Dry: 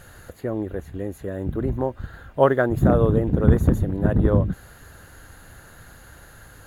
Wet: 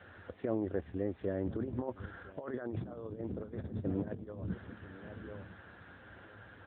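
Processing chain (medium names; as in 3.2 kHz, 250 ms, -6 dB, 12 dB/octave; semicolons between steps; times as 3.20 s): peak limiter -11.5 dBFS, peak gain reduction 9 dB; peaking EQ 140 Hz -12.5 dB 0.38 oct; on a send: feedback delay 1005 ms, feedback 18%, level -20 dB; on the sum: gate with hold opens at -52 dBFS; compressor with a negative ratio -27 dBFS, ratio -0.5; trim -8 dB; AMR-NB 10.2 kbps 8 kHz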